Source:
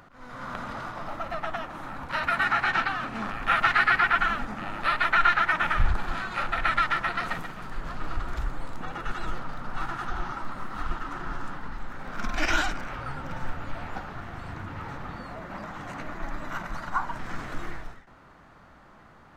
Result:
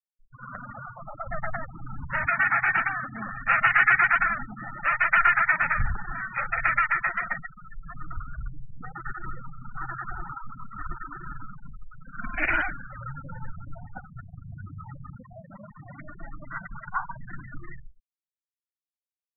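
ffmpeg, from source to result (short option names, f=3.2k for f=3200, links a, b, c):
-filter_complex "[0:a]asettb=1/sr,asplit=3[a][b][c];[a]atrim=end=1.274[d];[b]atrim=start=1.27:end=2.26,asetpts=PTS-STARTPTS,afade=t=in:d=0.004:c=qsin,afade=t=out:st=0.986:d=0.004:c=qsin,lowshelf=f=140:g=12[e];[c]atrim=start=2.256[f];[d][e]acrossfade=d=0.004:c1=hsin:c2=qsin[g];[g][f]acrossfade=d=0.004:c1=qsin:c2=hsin,asettb=1/sr,asplit=3[h][i][j];[h]atrim=end=6.764[k];[i]atrim=start=6.76:end=7.96,asetpts=PTS-STARTPTS,afade=t=in:d=0.004:c=qsin,afade=t=out:st=1.196:d=0.004:c=qsin,equalizer=f=110:t=o:w=1:g=-5[l];[j]atrim=start=7.956[m];[k][l]acrossfade=d=0.004:c1=hsin:c2=qsin[n];[n][m]acrossfade=d=0.004:c1=qsin:c2=hsin,equalizer=f=125:t=o:w=1:g=8,equalizer=f=500:t=o:w=1:g=4,equalizer=f=2k:t=o:w=1:g=9,equalizer=f=4k:t=o:w=1:g=-7,afftfilt=real='re*gte(hypot(re,im),0.0794)':imag='im*gte(hypot(re,im),0.0794)':win_size=1024:overlap=0.75,highshelf=f=3.3k:g=12,volume=-5.5dB"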